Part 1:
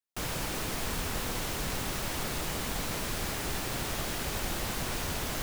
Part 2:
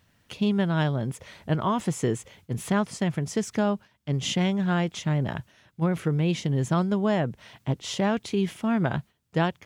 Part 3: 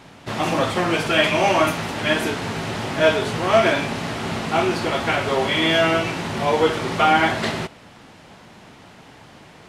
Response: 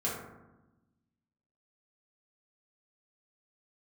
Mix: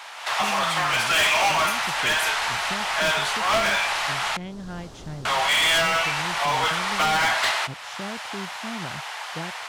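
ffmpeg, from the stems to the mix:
-filter_complex "[0:a]lowpass=5.4k,equalizer=f=2.2k:w=1.3:g=-13.5,adelay=1550,volume=-19dB[a];[1:a]volume=-17dB[b];[2:a]highpass=f=800:w=0.5412,highpass=f=800:w=1.3066,volume=23dB,asoftclip=hard,volume=-23dB,volume=2dB,asplit=3[c][d][e];[c]atrim=end=4.37,asetpts=PTS-STARTPTS,afade=t=out:st=4.366:d=0.004:c=hsin[f];[d]atrim=start=4.37:end=5.25,asetpts=PTS-STARTPTS,volume=0[g];[e]atrim=start=5.25,asetpts=PTS-STARTPTS,afade=t=in:d=0.004:c=hsin[h];[f][g][h]concat=n=3:v=0:a=1[i];[a][i]amix=inputs=2:normalize=0,acontrast=80,alimiter=limit=-22.5dB:level=0:latency=1:release=394,volume=0dB[j];[b][j]amix=inputs=2:normalize=0,dynaudnorm=f=140:g=3:m=6dB,alimiter=limit=-17dB:level=0:latency=1:release=214"

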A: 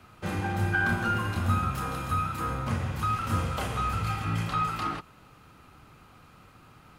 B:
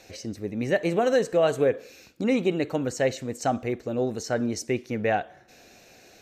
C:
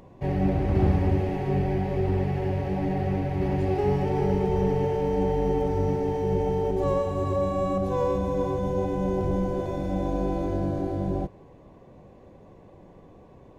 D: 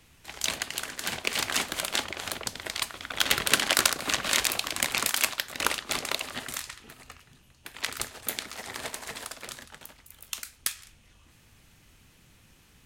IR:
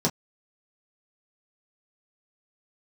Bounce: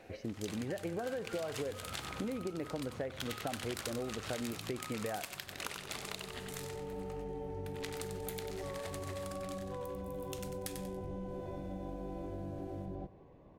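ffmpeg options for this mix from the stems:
-filter_complex "[0:a]acompressor=threshold=-34dB:ratio=6,adelay=250,volume=-7dB[a];[1:a]lowpass=1.8k,acompressor=threshold=-24dB:ratio=6,volume=-1dB,asplit=2[b][c];[2:a]lowpass=4.6k,acompressor=threshold=-29dB:ratio=6,adelay=1800,volume=-8.5dB,asplit=2[d][e];[e]volume=-19.5dB[f];[3:a]asoftclip=type=tanh:threshold=-5dB,volume=-11dB,asplit=2[g][h];[h]volume=-8dB[i];[c]apad=whole_len=678688[j];[d][j]sidechaincompress=threshold=-45dB:ratio=8:attack=16:release=1390[k];[f][i]amix=inputs=2:normalize=0,aecho=0:1:94|188|282|376:1|0.31|0.0961|0.0298[l];[a][b][k][g][l]amix=inputs=5:normalize=0,acompressor=threshold=-37dB:ratio=4"

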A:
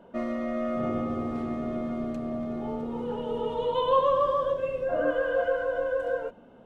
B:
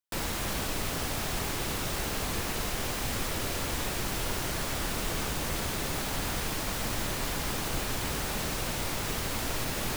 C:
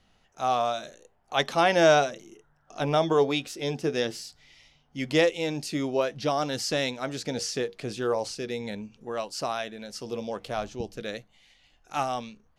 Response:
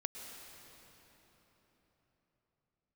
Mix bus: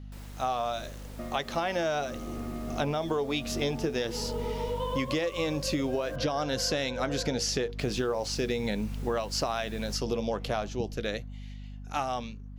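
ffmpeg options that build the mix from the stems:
-filter_complex "[0:a]acompressor=threshold=-38dB:ratio=3,adelay=1050,volume=-2dB[a];[1:a]volume=-19dB,asplit=3[b][c][d];[b]atrim=end=6.16,asetpts=PTS-STARTPTS,afade=t=out:st=6.156:d=0.004:c=hsin[e];[c]atrim=start=6.16:end=7.79,asetpts=PTS-STARTPTS,volume=0[f];[d]atrim=start=7.79,asetpts=PTS-STARTPTS,afade=t=in:d=0.004:c=hsin[g];[e][f][g]concat=n=3:v=0:a=1[h];[2:a]aeval=exprs='val(0)+0.00794*(sin(2*PI*50*n/s)+sin(2*PI*2*50*n/s)/2+sin(2*PI*3*50*n/s)/3+sin(2*PI*4*50*n/s)/4+sin(2*PI*5*50*n/s)/5)':c=same,equalizer=f=8.7k:w=5.3:g=-10.5,volume=0.5dB[i];[a][i]amix=inputs=2:normalize=0,dynaudnorm=f=550:g=11:m=11.5dB,alimiter=limit=-13dB:level=0:latency=1:release=383,volume=0dB[j];[h][j]amix=inputs=2:normalize=0,acompressor=threshold=-26dB:ratio=6"

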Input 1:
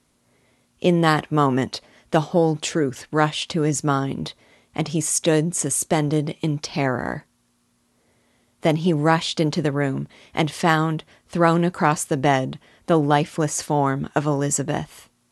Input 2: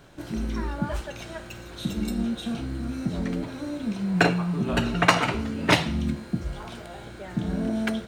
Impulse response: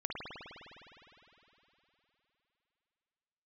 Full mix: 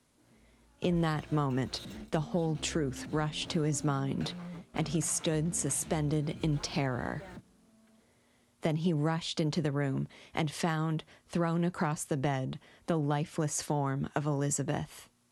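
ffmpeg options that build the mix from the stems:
-filter_complex "[0:a]volume=-5dB,asplit=2[a][b];[1:a]acompressor=threshold=-26dB:ratio=6,alimiter=level_in=2dB:limit=-24dB:level=0:latency=1:release=16,volume=-2dB,volume=32.5dB,asoftclip=hard,volume=-32.5dB,volume=-8dB[c];[b]apad=whole_len=355910[d];[c][d]sidechaingate=range=-22dB:threshold=-59dB:ratio=16:detection=peak[e];[a][e]amix=inputs=2:normalize=0,acrossover=split=150[f][g];[g]acompressor=threshold=-29dB:ratio=6[h];[f][h]amix=inputs=2:normalize=0"

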